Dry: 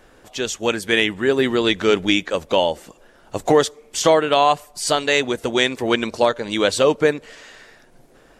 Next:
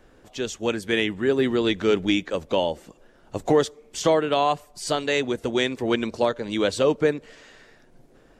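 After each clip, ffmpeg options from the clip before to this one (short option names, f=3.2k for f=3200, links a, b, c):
-filter_complex "[0:a]equalizer=f=11k:t=o:w=0.79:g=-4,acrossover=split=460[a][b];[a]acontrast=39[c];[c][b]amix=inputs=2:normalize=0,volume=-7dB"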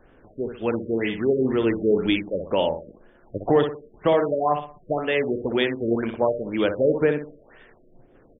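-filter_complex "[0:a]asplit=2[a][b];[b]aecho=0:1:61|122|183|244:0.422|0.152|0.0547|0.0197[c];[a][c]amix=inputs=2:normalize=0,afftfilt=real='re*lt(b*sr/1024,620*pow(3700/620,0.5+0.5*sin(2*PI*2*pts/sr)))':imag='im*lt(b*sr/1024,620*pow(3700/620,0.5+0.5*sin(2*PI*2*pts/sr)))':win_size=1024:overlap=0.75"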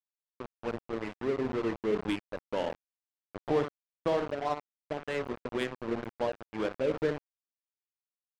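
-af "aeval=exprs='val(0)*gte(abs(val(0)),0.0794)':c=same,adynamicsmooth=sensitivity=1:basefreq=1.1k,volume=-9dB"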